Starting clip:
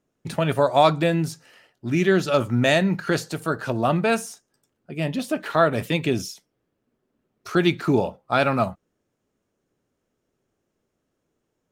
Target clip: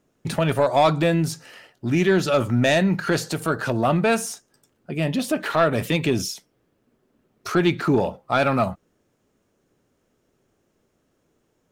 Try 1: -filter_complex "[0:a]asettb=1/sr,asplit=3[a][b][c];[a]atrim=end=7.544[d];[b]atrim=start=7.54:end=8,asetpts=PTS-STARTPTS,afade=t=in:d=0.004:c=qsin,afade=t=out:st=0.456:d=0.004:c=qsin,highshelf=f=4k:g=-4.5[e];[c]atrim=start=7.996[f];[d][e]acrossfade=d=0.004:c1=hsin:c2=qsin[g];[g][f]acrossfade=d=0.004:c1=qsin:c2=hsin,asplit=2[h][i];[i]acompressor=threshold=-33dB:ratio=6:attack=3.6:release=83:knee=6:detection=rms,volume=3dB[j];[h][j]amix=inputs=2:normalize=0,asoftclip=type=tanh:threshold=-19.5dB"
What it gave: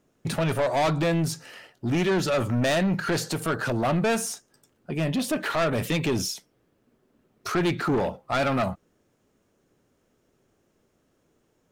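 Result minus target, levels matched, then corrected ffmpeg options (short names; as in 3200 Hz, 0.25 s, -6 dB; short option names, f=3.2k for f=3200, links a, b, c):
soft clip: distortion +11 dB
-filter_complex "[0:a]asettb=1/sr,asplit=3[a][b][c];[a]atrim=end=7.544[d];[b]atrim=start=7.54:end=8,asetpts=PTS-STARTPTS,afade=t=in:d=0.004:c=qsin,afade=t=out:st=0.456:d=0.004:c=qsin,highshelf=f=4k:g=-4.5[e];[c]atrim=start=7.996[f];[d][e]acrossfade=d=0.004:c1=hsin:c2=qsin[g];[g][f]acrossfade=d=0.004:c1=qsin:c2=hsin,asplit=2[h][i];[i]acompressor=threshold=-33dB:ratio=6:attack=3.6:release=83:knee=6:detection=rms,volume=3dB[j];[h][j]amix=inputs=2:normalize=0,asoftclip=type=tanh:threshold=-8.5dB"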